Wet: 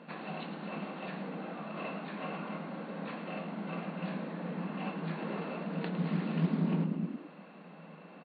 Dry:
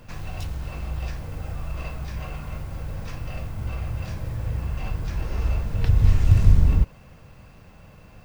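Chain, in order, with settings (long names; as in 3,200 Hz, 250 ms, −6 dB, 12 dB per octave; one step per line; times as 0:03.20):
high-shelf EQ 2,900 Hz −9.5 dB
echo with shifted repeats 107 ms, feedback 38%, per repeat +63 Hz, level −10 dB
in parallel at −2.5 dB: downward compressor, threshold −24 dBFS, peak gain reduction 15.5 dB
on the sum: brick-wall band-pass 160–4,500 Hz
highs frequency-modulated by the lows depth 0.2 ms
level −3.5 dB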